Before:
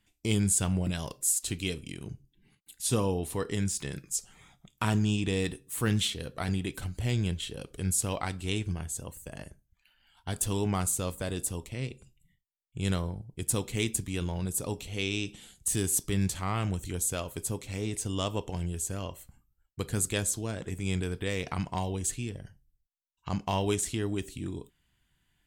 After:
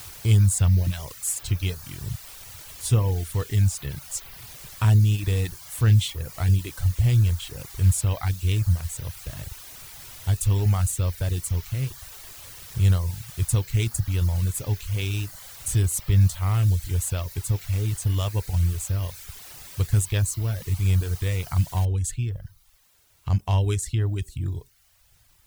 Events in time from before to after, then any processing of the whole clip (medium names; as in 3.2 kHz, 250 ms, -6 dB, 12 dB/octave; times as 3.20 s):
21.85 s: noise floor step -41 dB -60 dB
whole clip: resonant low shelf 150 Hz +12.5 dB, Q 1.5; reverb removal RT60 0.71 s